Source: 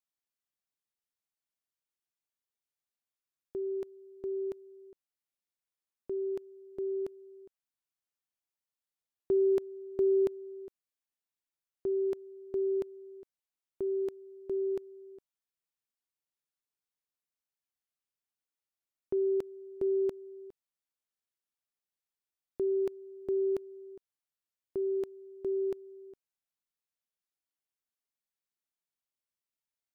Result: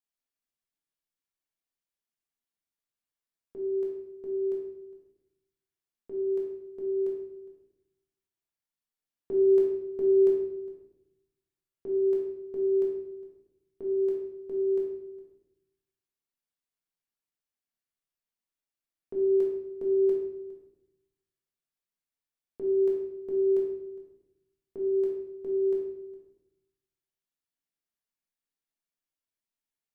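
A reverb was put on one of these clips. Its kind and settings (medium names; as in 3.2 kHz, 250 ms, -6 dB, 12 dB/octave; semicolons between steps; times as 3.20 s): simulated room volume 270 m³, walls mixed, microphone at 1.7 m; trim -6 dB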